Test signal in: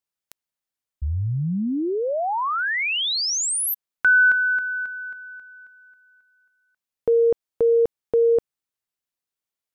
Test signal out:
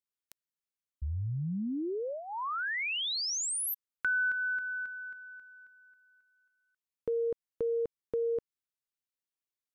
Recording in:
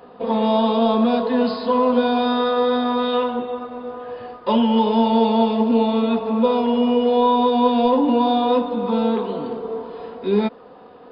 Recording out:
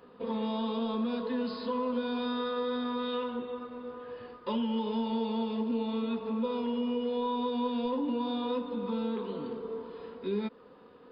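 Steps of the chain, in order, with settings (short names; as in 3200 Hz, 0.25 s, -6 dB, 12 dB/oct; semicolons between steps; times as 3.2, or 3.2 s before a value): bell 720 Hz -12.5 dB 0.44 oct; compressor 2:1, threshold -23 dBFS; gain -8.5 dB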